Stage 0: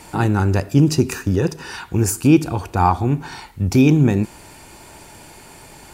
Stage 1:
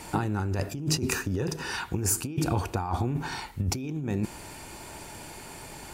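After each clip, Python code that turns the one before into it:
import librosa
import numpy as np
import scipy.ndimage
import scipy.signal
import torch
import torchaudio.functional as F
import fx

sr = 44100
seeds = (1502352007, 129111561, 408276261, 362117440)

y = fx.over_compress(x, sr, threshold_db=-22.0, ratio=-1.0)
y = y * 10.0 ** (-6.5 / 20.0)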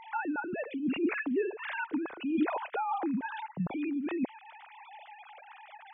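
y = fx.sine_speech(x, sr)
y = y * 10.0 ** (-3.5 / 20.0)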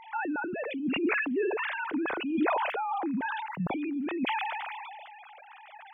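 y = fx.sustainer(x, sr, db_per_s=24.0)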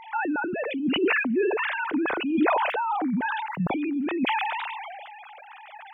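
y = fx.record_warp(x, sr, rpm=33.33, depth_cents=160.0)
y = y * 10.0 ** (5.0 / 20.0)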